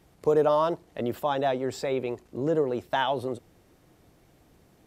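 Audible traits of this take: noise floor -61 dBFS; spectral tilt -4.5 dB/oct

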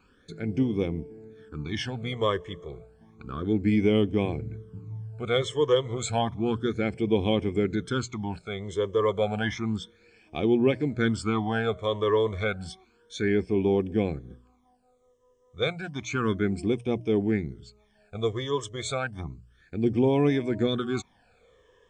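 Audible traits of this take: phasing stages 12, 0.31 Hz, lowest notch 240–1400 Hz

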